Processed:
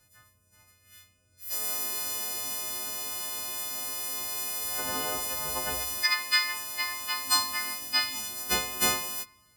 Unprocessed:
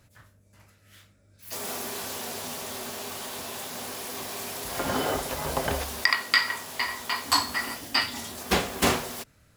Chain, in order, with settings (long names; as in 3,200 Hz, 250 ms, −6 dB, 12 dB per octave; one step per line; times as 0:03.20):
every partial snapped to a pitch grid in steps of 3 semitones
spring reverb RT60 1.1 s, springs 33 ms, chirp 35 ms, DRR 14 dB
level −8.5 dB